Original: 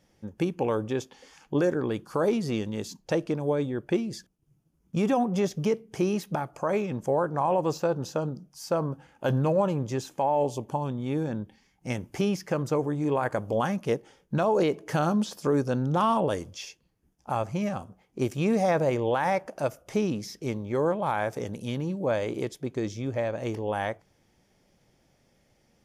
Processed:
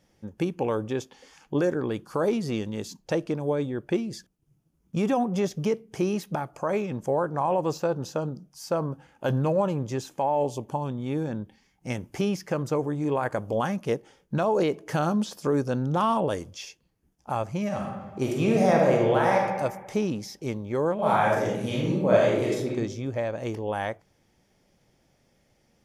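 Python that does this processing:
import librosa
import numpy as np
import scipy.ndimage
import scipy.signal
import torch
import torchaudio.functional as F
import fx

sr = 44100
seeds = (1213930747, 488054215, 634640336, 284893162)

y = fx.reverb_throw(x, sr, start_s=17.67, length_s=1.76, rt60_s=1.3, drr_db=-1.5)
y = fx.reverb_throw(y, sr, start_s=20.94, length_s=1.76, rt60_s=0.81, drr_db=-5.5)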